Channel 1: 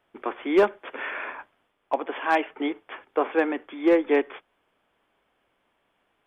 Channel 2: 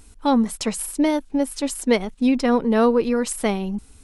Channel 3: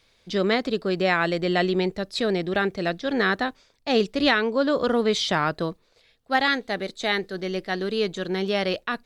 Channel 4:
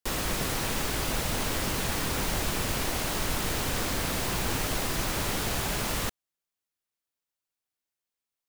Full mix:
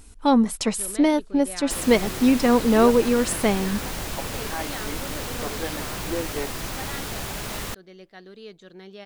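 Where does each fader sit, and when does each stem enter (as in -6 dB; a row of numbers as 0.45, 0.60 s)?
-10.5, +0.5, -17.5, -2.0 dB; 2.25, 0.00, 0.45, 1.65 s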